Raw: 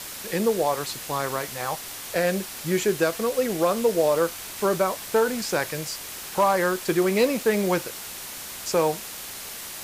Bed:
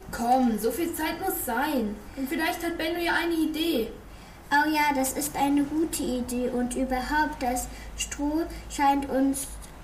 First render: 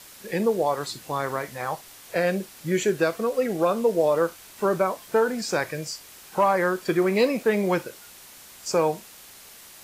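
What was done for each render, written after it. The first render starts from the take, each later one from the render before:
noise reduction from a noise print 10 dB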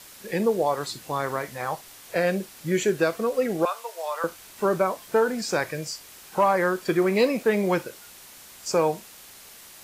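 0:03.65–0:04.24: high-pass filter 810 Hz 24 dB per octave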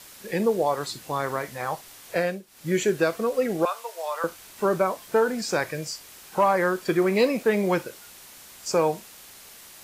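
0:02.18–0:02.70: duck −15 dB, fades 0.24 s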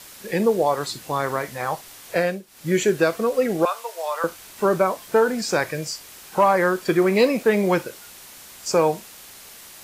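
level +3.5 dB

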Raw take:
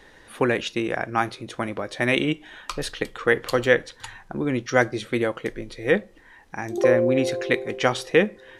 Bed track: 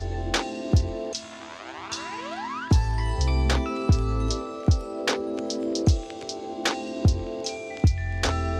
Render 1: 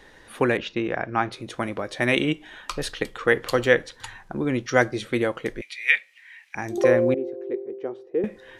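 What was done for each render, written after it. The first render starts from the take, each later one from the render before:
0:00.57–0:01.32: high-frequency loss of the air 170 metres
0:05.61–0:06.55: high-pass with resonance 2,300 Hz
0:07.14–0:08.24: resonant band-pass 380 Hz, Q 4.7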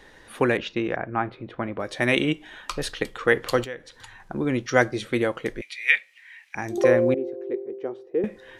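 0:00.96–0:01.80: high-frequency loss of the air 460 metres
0:03.64–0:04.20: downward compressor 2 to 1, threshold −45 dBFS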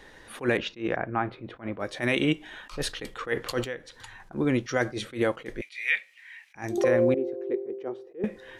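brickwall limiter −12.5 dBFS, peak gain reduction 10 dB
level that may rise only so fast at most 230 dB per second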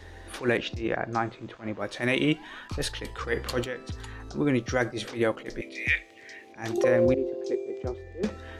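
mix in bed track −17.5 dB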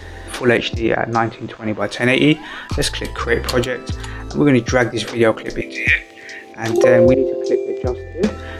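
level +12 dB
brickwall limiter −2 dBFS, peak gain reduction 2 dB

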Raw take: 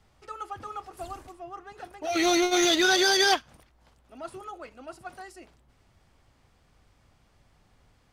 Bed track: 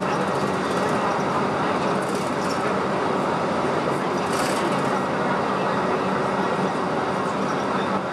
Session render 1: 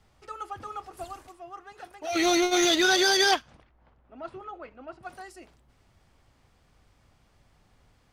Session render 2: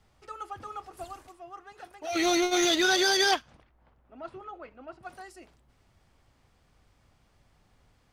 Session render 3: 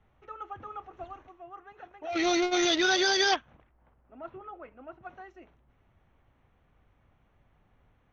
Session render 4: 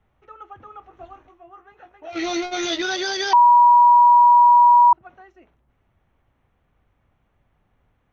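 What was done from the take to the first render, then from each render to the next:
0:01.04–0:02.13: low-shelf EQ 490 Hz −6.5 dB; 0:03.31–0:05.03: low-pass that shuts in the quiet parts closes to 1,700 Hz, open at −23.5 dBFS
level −2 dB
adaptive Wiener filter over 9 samples; elliptic low-pass filter 6,100 Hz, stop band 40 dB
0:00.80–0:02.82: double-tracking delay 18 ms −5.5 dB; 0:03.33–0:04.93: beep over 964 Hz −8.5 dBFS

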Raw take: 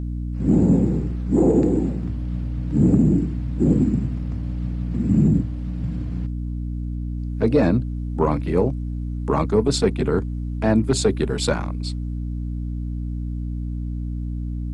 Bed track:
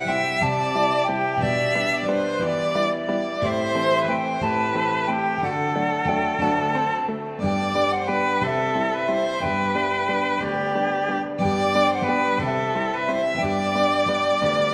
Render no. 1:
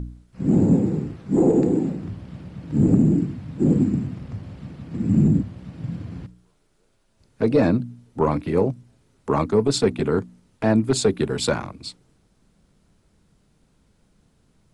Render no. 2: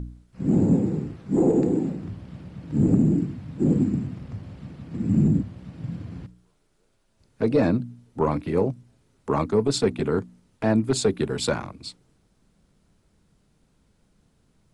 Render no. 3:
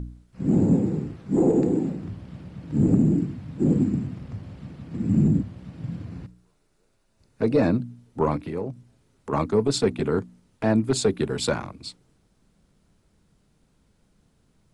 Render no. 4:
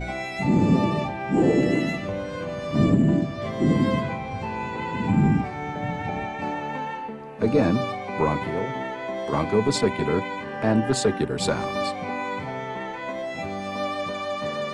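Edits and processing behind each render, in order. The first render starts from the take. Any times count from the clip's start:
hum removal 60 Hz, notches 5
level −2.5 dB
0:06.05–0:07.73: notch filter 3,200 Hz; 0:08.36–0:09.33: downward compressor 2 to 1, threshold −31 dBFS
mix in bed track −8 dB

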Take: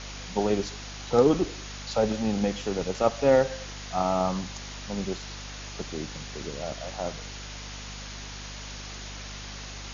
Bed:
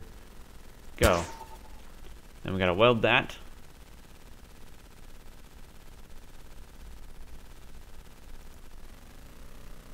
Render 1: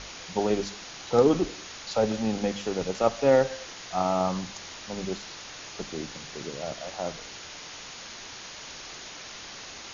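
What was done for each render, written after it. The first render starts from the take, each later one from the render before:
mains-hum notches 50/100/150/200/250 Hz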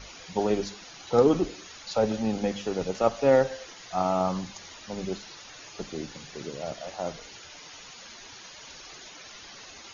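broadband denoise 10 dB, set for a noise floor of −43 dBFS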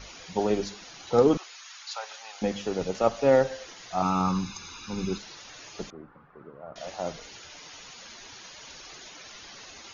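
0:01.37–0:02.42: high-pass filter 940 Hz 24 dB per octave
0:04.02–0:05.18: comb filter 0.8 ms, depth 86%
0:05.90–0:06.76: transistor ladder low-pass 1,400 Hz, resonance 60%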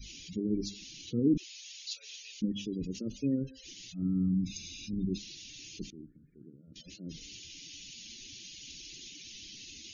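gate on every frequency bin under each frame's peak −20 dB strong
Chebyshev band-stop filter 310–2,700 Hz, order 3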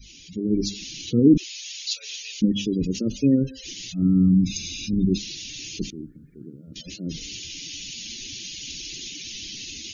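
automatic gain control gain up to 12 dB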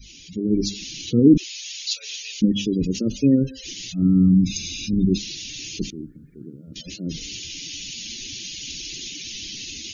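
level +2 dB

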